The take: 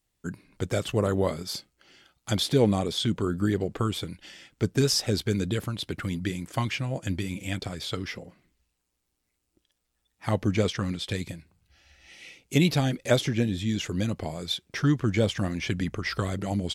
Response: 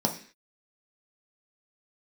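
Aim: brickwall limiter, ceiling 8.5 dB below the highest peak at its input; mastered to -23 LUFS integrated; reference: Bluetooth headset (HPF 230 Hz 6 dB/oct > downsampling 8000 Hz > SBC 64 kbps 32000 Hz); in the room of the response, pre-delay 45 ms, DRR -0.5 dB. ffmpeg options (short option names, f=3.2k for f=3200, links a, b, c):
-filter_complex "[0:a]alimiter=limit=-17.5dB:level=0:latency=1,asplit=2[a][b];[1:a]atrim=start_sample=2205,adelay=45[c];[b][c]afir=irnorm=-1:irlink=0,volume=-9dB[d];[a][d]amix=inputs=2:normalize=0,highpass=f=230:p=1,aresample=8000,aresample=44100,volume=3dB" -ar 32000 -c:a sbc -b:a 64k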